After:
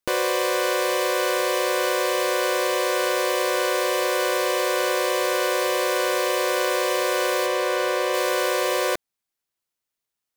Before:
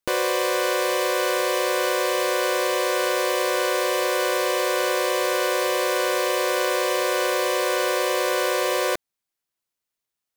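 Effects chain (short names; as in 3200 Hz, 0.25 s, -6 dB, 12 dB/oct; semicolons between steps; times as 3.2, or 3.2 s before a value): 7.46–8.14 high shelf 4900 Hz -7 dB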